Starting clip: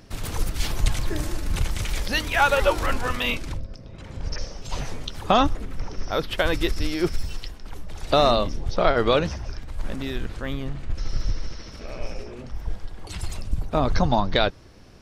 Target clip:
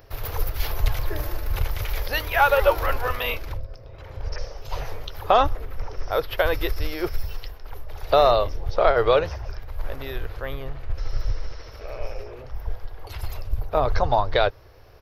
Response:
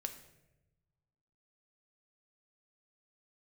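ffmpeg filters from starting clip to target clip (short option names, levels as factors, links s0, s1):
-af "firequalizer=gain_entry='entry(110,0);entry(190,-18);entry(440,3);entry(3300,-4);entry(5100,-4);entry(8500,-19);entry(12000,9)':delay=0.05:min_phase=1"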